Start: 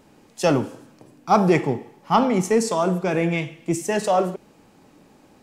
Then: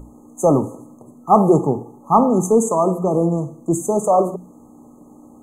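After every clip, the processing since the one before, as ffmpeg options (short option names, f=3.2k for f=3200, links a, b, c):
-af "aeval=exprs='val(0)+0.0126*(sin(2*PI*60*n/s)+sin(2*PI*2*60*n/s)/2+sin(2*PI*3*60*n/s)/3+sin(2*PI*4*60*n/s)/4+sin(2*PI*5*60*n/s)/5)':c=same,bandreject=f=60:t=h:w=6,bandreject=f=120:t=h:w=6,bandreject=f=180:t=h:w=6,afftfilt=real='re*(1-between(b*sr/4096,1300,6200))':imag='im*(1-between(b*sr/4096,1300,6200))':win_size=4096:overlap=0.75,volume=4.5dB"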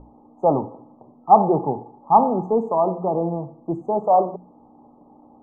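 -af "lowpass=f=840:t=q:w=3.4,volume=-8dB"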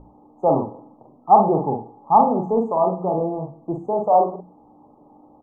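-filter_complex "[0:a]asplit=2[a][b];[b]adelay=44,volume=-4dB[c];[a][c]amix=inputs=2:normalize=0,volume=-1dB"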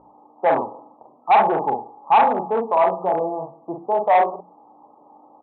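-af "aresample=8000,asoftclip=type=hard:threshold=-14.5dB,aresample=44100,bandpass=f=1.1k:t=q:w=1:csg=0,volume=6dB"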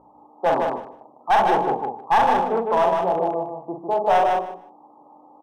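-filter_complex "[0:a]aeval=exprs='clip(val(0),-1,0.2)':c=same,asplit=2[a][b];[b]aecho=0:1:153|306|459:0.631|0.107|0.0182[c];[a][c]amix=inputs=2:normalize=0,volume=-1.5dB"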